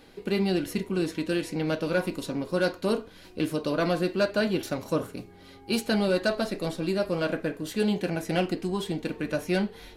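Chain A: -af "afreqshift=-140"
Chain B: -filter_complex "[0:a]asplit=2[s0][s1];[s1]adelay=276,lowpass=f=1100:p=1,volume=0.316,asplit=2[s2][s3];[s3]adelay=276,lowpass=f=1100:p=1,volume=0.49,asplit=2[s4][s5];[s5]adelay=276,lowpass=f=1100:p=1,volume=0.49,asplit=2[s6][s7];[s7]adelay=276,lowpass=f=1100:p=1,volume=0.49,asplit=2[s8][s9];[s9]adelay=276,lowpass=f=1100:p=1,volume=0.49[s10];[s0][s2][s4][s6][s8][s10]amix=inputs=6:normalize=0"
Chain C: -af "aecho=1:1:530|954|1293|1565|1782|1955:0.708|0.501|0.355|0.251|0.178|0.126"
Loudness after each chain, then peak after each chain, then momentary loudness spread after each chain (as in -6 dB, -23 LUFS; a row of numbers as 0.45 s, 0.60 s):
-29.0 LUFS, -28.0 LUFS, -26.0 LUFS; -11.5 dBFS, -13.5 dBFS, -10.5 dBFS; 6 LU, 6 LU, 3 LU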